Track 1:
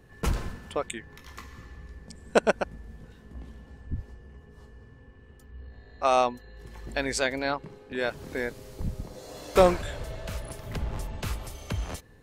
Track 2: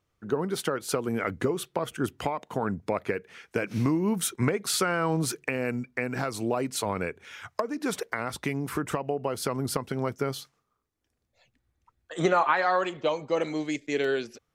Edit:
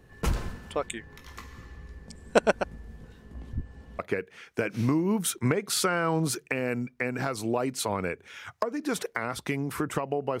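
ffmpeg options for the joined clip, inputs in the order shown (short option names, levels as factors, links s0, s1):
-filter_complex "[0:a]apad=whole_dur=10.4,atrim=end=10.4,asplit=2[s0][s1];[s0]atrim=end=3.532[s2];[s1]atrim=start=3.528:end=3.992,asetpts=PTS-STARTPTS,areverse[s3];[1:a]atrim=start=2.958:end=9.37[s4];[s2][s3]acrossfade=d=0.004:c1=hsin:c2=hsin[s5];[s5][s4]acrossfade=d=0.004:c1=hsin:c2=hsin"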